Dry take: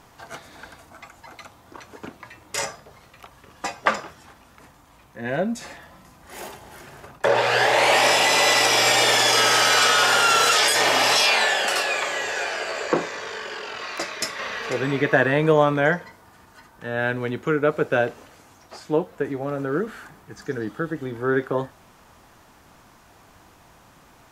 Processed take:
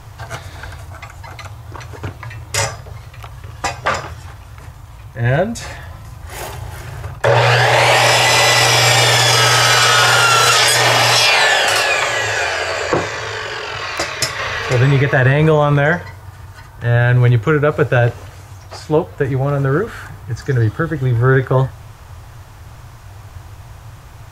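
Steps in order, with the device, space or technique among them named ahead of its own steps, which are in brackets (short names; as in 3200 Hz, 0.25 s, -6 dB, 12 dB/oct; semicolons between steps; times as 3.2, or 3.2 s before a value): car stereo with a boomy subwoofer (resonant low shelf 150 Hz +11 dB, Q 3; limiter -11.5 dBFS, peak gain reduction 9 dB); gain +9 dB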